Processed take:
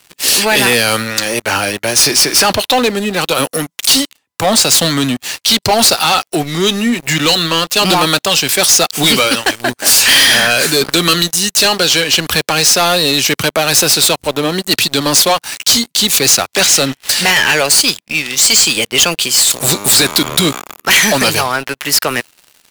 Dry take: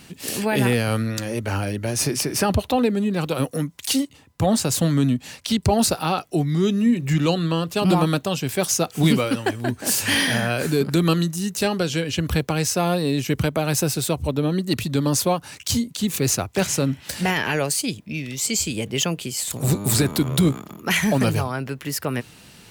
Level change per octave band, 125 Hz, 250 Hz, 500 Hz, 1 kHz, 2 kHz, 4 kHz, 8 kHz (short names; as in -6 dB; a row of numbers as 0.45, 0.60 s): -1.5, +2.5, +7.5, +11.0, +14.0, +17.5, +14.5 dB